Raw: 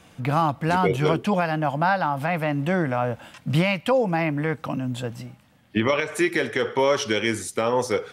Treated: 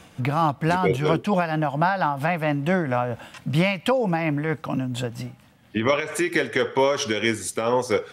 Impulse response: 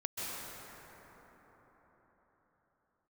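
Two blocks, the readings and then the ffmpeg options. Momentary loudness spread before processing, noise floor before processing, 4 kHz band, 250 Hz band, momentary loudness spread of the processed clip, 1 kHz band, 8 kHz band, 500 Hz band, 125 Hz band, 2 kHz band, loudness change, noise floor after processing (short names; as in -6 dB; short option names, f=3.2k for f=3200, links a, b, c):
8 LU, -54 dBFS, +0.5 dB, 0.0 dB, 7 LU, 0.0 dB, +1.5 dB, 0.0 dB, +0.5 dB, 0.0 dB, 0.0 dB, -52 dBFS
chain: -filter_complex "[0:a]asplit=2[a][b];[b]acompressor=threshold=-29dB:ratio=6,volume=-2dB[c];[a][c]amix=inputs=2:normalize=0,tremolo=f=4.4:d=0.43"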